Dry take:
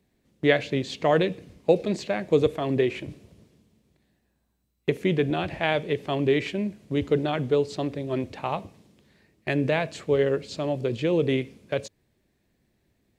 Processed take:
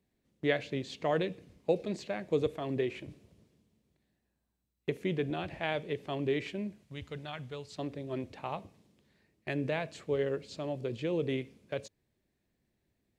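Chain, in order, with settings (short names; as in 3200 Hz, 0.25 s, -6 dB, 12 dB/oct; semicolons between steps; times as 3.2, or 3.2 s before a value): 6.83–7.79 bell 350 Hz -15 dB 1.7 oct; gain -9 dB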